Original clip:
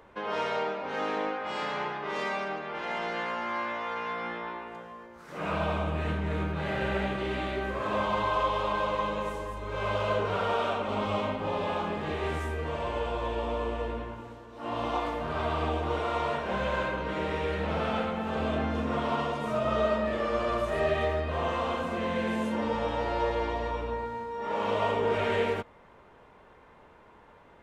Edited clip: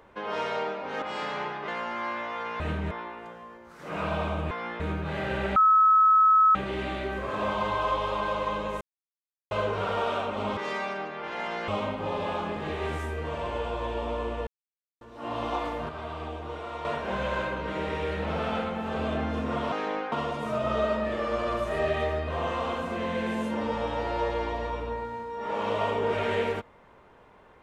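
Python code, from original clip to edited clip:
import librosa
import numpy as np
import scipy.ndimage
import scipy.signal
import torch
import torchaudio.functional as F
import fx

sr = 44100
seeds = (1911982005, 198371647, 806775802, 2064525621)

y = fx.edit(x, sr, fx.move(start_s=1.02, length_s=0.4, to_s=19.13),
    fx.move(start_s=2.08, length_s=1.11, to_s=11.09),
    fx.swap(start_s=4.11, length_s=0.29, other_s=6.0, other_length_s=0.31),
    fx.insert_tone(at_s=7.07, length_s=0.99, hz=1290.0, db=-15.5),
    fx.silence(start_s=9.33, length_s=0.7),
    fx.silence(start_s=13.88, length_s=0.54),
    fx.clip_gain(start_s=15.3, length_s=0.96, db=-7.0), tone=tone)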